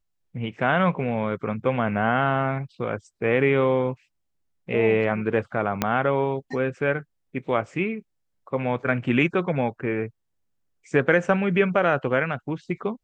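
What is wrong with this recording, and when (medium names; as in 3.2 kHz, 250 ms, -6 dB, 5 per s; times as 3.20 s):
5.82 s: pop -6 dBFS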